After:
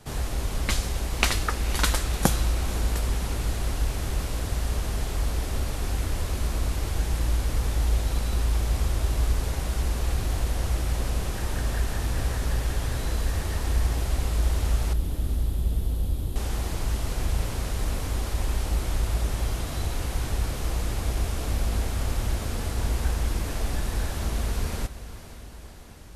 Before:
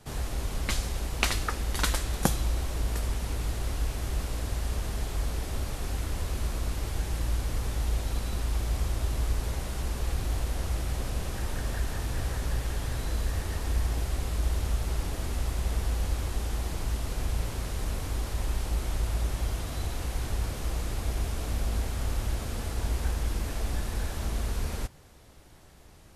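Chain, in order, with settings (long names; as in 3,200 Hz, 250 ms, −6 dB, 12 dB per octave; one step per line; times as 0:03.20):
0:14.93–0:16.36: drawn EQ curve 270 Hz 0 dB, 2,000 Hz −22 dB, 3,400 Hz −6 dB, 5,900 Hz −17 dB, 12,000 Hz −2 dB
feedback delay with all-pass diffusion 510 ms, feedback 63%, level −14 dB
level +3.5 dB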